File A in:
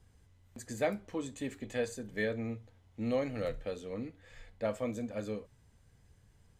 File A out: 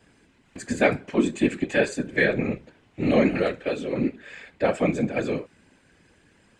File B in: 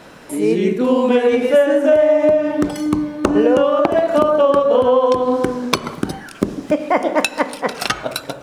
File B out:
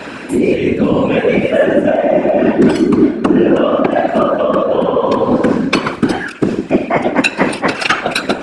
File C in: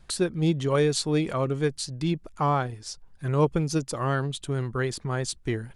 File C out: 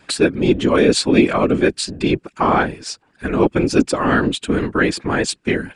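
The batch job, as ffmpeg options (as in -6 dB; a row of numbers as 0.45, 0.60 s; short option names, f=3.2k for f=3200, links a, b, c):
-af "areverse,acompressor=threshold=-23dB:ratio=6,areverse,highpass=200,equalizer=f=280:t=q:w=4:g=10,equalizer=f=1.6k:t=q:w=4:g=6,equalizer=f=2.5k:t=q:w=4:g=8,equalizer=f=6.1k:t=q:w=4:g=-5,lowpass=f=8.8k:w=0.5412,lowpass=f=8.8k:w=1.3066,afftfilt=real='hypot(re,im)*cos(2*PI*random(0))':imag='hypot(re,im)*sin(2*PI*random(1))':win_size=512:overlap=0.75,acontrast=50,apsyclip=12.5dB,volume=-1.5dB"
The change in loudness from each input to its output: +13.0, +3.0, +9.5 LU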